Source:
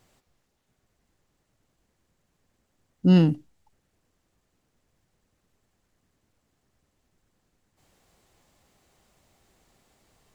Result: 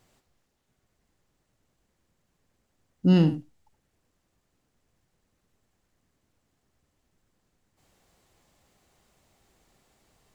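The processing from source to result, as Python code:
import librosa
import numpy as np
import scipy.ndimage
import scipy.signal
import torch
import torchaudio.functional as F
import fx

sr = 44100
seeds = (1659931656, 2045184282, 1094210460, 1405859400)

y = x + 10.0 ** (-12.0 / 20.0) * np.pad(x, (int(74 * sr / 1000.0), 0))[:len(x)]
y = y * librosa.db_to_amplitude(-1.5)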